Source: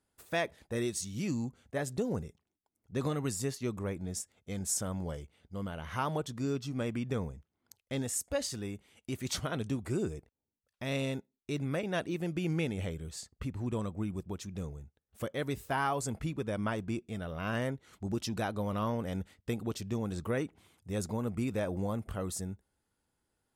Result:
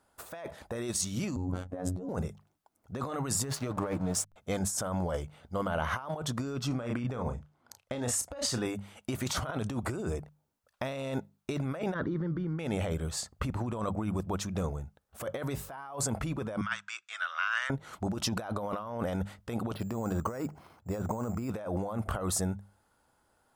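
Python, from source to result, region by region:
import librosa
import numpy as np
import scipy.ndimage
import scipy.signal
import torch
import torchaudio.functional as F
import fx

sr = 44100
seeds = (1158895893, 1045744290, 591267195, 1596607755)

y = fx.chain(x, sr, fx.tilt_shelf(db=10.0, hz=710.0),
    fx.robotise(hz=91.2),
    fx.sustainer(db_per_s=100.0), at=(1.36, 2.09))
y = fx.chain(y, sr, fx.comb(ms=6.6, depth=0.47),
    fx.backlash(play_db=-45.0), at=(3.43, 4.36))
y = fx.chain(y, sr, fx.high_shelf(hz=11000.0, db=-11.0),
    fx.doubler(ms=33.0, db=-9.0), at=(6.67, 8.66))
y = fx.chain(y, sr, fx.spacing_loss(db_at_10k=38),
    fx.fixed_phaser(hz=2600.0, stages=6),
    fx.env_flatten(amount_pct=50), at=(11.94, 12.59))
y = fx.chain(y, sr, fx.ellip_bandpass(low_hz=1400.0, high_hz=7400.0, order=3, stop_db=80),
    fx.band_squash(depth_pct=40), at=(16.61, 17.7))
y = fx.chain(y, sr, fx.lowpass(hz=2000.0, slope=6),
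    fx.resample_bad(factor=6, down='filtered', up='hold'), at=(19.75, 21.5))
y = fx.band_shelf(y, sr, hz=910.0, db=8.0, octaves=1.7)
y = fx.hum_notches(y, sr, base_hz=50, count=4)
y = fx.over_compress(y, sr, threshold_db=-37.0, ratio=-1.0)
y = F.gain(torch.from_numpy(y), 3.5).numpy()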